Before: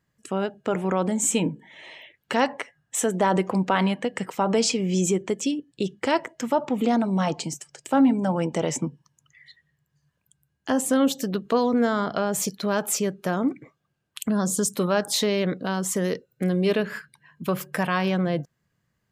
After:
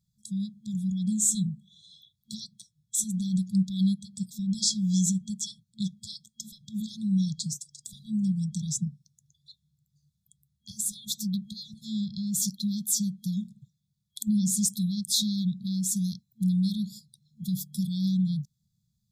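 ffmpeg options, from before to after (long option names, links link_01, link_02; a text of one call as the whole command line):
ffmpeg -i in.wav -filter_complex "[0:a]asettb=1/sr,asplit=3[link_01][link_02][link_03];[link_01]atrim=end=6.134[link_04];[link_02]atrim=start=6.13:end=6.61,asetpts=PTS-STARTPTS,afade=type=in:duration=0.004:curve=qsin,afade=type=out:start_time=0.476:duration=0.004:curve=qsin,equalizer=frequency=110:width=1.5:gain=-10[link_05];[link_03]atrim=start=6.606[link_06];[link_04][link_05]acrossfade=duration=0.004:curve1=hsin:curve2=qsin[link_07];[link_07][link_06]acrossfade=duration=0.004:curve1=qsin:curve2=hsin,asettb=1/sr,asplit=3[link_08][link_09][link_10];[link_08]atrim=end=16.924[link_11];[link_09]atrim=start=16.92:end=17.61,asetpts=PTS-STARTPTS,afade=type=in:duration=0.004:curve=qsin,afade=type=out:start_time=0.686:duration=0.004:curve=qsin,equalizer=frequency=6200:width=1.5:gain=4[link_12];[link_10]atrim=start=17.606[link_13];[link_11][link_12]acrossfade=duration=0.004:curve1=hsin:curve2=qsin[link_14];[link_14][link_13]acrossfade=duration=0.004:curve1=qsin:curve2=hsin,afftfilt=real='re*(1-between(b*sr/4096,220,3300))':imag='im*(1-between(b*sr/4096,220,3300))':win_size=4096:overlap=0.75" out.wav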